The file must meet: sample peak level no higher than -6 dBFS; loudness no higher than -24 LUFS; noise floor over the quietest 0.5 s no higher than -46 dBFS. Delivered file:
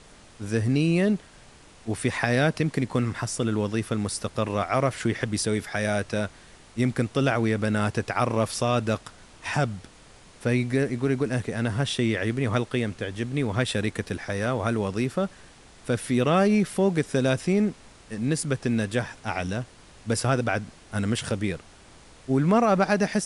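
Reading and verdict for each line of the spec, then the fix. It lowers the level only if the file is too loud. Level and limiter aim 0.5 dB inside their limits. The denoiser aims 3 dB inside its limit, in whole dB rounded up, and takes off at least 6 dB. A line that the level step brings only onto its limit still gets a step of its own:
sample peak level -5.0 dBFS: fail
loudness -26.0 LUFS: pass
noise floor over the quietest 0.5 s -51 dBFS: pass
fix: peak limiter -6.5 dBFS

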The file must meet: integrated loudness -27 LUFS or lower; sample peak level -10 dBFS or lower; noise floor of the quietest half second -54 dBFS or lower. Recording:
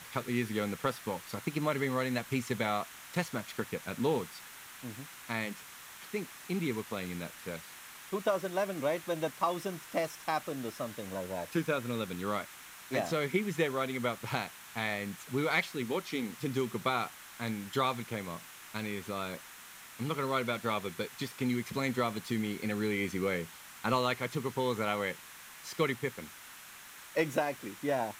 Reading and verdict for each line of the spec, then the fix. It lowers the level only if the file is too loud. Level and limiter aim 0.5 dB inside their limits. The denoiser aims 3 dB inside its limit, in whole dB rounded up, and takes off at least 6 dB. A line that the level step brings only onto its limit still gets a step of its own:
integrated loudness -34.5 LUFS: pass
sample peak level -16.5 dBFS: pass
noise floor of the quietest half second -51 dBFS: fail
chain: noise reduction 6 dB, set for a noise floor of -51 dBFS

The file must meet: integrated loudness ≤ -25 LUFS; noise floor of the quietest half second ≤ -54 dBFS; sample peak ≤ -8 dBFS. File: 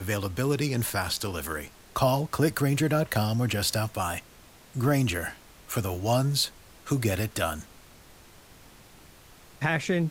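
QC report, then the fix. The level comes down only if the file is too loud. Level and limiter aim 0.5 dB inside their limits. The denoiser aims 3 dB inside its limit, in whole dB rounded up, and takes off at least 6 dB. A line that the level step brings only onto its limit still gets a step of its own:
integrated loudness -27.5 LUFS: pass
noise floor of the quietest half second -53 dBFS: fail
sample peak -10.5 dBFS: pass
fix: noise reduction 6 dB, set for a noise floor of -53 dBFS

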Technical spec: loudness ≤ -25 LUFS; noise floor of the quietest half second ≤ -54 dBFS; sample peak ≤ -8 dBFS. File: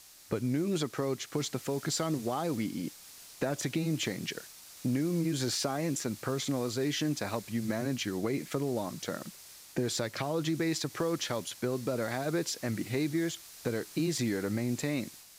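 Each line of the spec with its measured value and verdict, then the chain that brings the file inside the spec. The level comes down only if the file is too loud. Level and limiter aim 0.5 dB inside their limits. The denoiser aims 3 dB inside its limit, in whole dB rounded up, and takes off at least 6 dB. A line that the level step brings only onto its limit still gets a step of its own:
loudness -33.0 LUFS: pass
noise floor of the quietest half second -51 dBFS: fail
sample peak -18.5 dBFS: pass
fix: noise reduction 6 dB, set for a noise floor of -51 dBFS

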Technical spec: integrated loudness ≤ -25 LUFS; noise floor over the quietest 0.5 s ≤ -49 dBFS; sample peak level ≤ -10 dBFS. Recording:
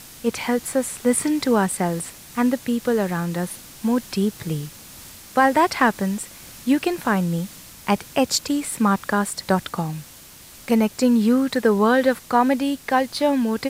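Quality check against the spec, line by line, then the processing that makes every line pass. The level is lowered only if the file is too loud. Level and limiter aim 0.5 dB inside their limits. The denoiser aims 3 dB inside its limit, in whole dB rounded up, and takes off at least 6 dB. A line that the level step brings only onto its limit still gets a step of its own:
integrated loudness -21.5 LUFS: fail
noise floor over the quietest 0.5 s -44 dBFS: fail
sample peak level -4.5 dBFS: fail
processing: noise reduction 6 dB, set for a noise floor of -44 dBFS; trim -4 dB; peak limiter -10.5 dBFS

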